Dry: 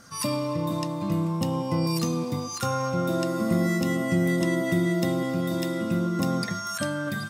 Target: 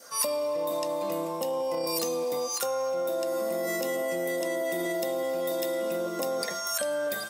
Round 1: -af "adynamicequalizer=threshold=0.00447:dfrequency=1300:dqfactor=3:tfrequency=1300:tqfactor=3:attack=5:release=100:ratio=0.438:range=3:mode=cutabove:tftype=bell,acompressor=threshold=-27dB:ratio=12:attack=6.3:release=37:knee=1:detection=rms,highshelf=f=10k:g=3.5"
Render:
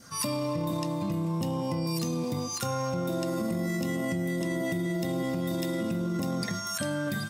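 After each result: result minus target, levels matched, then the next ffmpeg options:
500 Hz band -5.5 dB; 8000 Hz band -3.0 dB
-af "adynamicequalizer=threshold=0.00447:dfrequency=1300:dqfactor=3:tfrequency=1300:tqfactor=3:attack=5:release=100:ratio=0.438:range=3:mode=cutabove:tftype=bell,highpass=f=530:t=q:w=2.9,acompressor=threshold=-27dB:ratio=12:attack=6.3:release=37:knee=1:detection=rms,highshelf=f=10k:g=3.5"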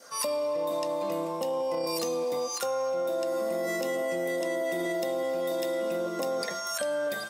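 8000 Hz band -3.0 dB
-af "adynamicequalizer=threshold=0.00447:dfrequency=1300:dqfactor=3:tfrequency=1300:tqfactor=3:attack=5:release=100:ratio=0.438:range=3:mode=cutabove:tftype=bell,highpass=f=530:t=q:w=2.9,acompressor=threshold=-27dB:ratio=12:attack=6.3:release=37:knee=1:detection=rms,highshelf=f=10k:g=14.5"

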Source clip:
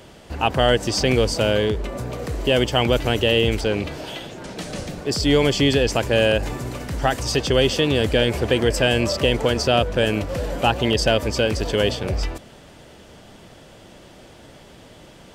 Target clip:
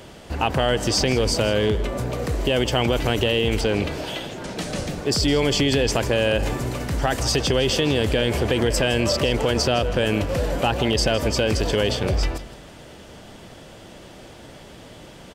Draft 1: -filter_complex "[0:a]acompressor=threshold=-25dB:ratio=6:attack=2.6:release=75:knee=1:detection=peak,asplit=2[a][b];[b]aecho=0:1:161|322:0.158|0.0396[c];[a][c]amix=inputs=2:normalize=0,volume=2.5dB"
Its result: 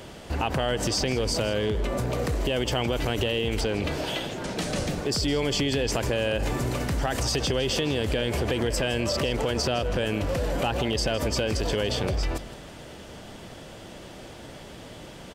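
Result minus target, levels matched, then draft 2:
compressor: peak gain reduction +6 dB
-filter_complex "[0:a]acompressor=threshold=-18dB:ratio=6:attack=2.6:release=75:knee=1:detection=peak,asplit=2[a][b];[b]aecho=0:1:161|322:0.158|0.0396[c];[a][c]amix=inputs=2:normalize=0,volume=2.5dB"

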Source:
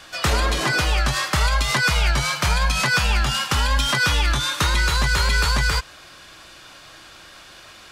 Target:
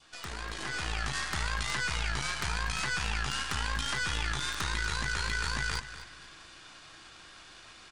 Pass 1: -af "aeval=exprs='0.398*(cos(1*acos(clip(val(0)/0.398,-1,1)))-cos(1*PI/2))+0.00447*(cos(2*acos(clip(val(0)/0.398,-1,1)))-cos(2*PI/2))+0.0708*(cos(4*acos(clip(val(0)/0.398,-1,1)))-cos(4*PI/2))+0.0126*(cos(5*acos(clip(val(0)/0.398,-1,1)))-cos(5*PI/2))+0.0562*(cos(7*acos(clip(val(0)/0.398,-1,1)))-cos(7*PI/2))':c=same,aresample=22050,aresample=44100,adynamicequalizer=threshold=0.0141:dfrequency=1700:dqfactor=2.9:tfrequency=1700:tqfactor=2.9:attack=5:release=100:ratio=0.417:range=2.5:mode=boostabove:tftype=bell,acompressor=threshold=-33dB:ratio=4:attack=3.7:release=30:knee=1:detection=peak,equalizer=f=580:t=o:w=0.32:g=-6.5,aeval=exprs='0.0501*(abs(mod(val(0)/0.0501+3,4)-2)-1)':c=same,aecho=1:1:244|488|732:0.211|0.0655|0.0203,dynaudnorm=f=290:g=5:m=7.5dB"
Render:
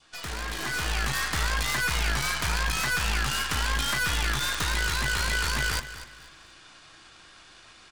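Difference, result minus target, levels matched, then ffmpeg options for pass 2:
compressor: peak gain reduction -8 dB
-af "aeval=exprs='0.398*(cos(1*acos(clip(val(0)/0.398,-1,1)))-cos(1*PI/2))+0.00447*(cos(2*acos(clip(val(0)/0.398,-1,1)))-cos(2*PI/2))+0.0708*(cos(4*acos(clip(val(0)/0.398,-1,1)))-cos(4*PI/2))+0.0126*(cos(5*acos(clip(val(0)/0.398,-1,1)))-cos(5*PI/2))+0.0562*(cos(7*acos(clip(val(0)/0.398,-1,1)))-cos(7*PI/2))':c=same,aresample=22050,aresample=44100,adynamicequalizer=threshold=0.0141:dfrequency=1700:dqfactor=2.9:tfrequency=1700:tqfactor=2.9:attack=5:release=100:ratio=0.417:range=2.5:mode=boostabove:tftype=bell,acompressor=threshold=-43.5dB:ratio=4:attack=3.7:release=30:knee=1:detection=peak,equalizer=f=580:t=o:w=0.32:g=-6.5,aeval=exprs='0.0501*(abs(mod(val(0)/0.0501+3,4)-2)-1)':c=same,aecho=1:1:244|488|732:0.211|0.0655|0.0203,dynaudnorm=f=290:g=5:m=7.5dB"

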